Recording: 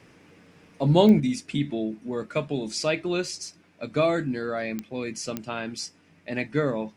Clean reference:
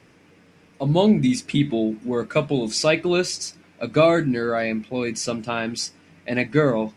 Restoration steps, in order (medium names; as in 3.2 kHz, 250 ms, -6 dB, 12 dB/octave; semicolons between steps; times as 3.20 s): de-click; trim 0 dB, from 1.20 s +6.5 dB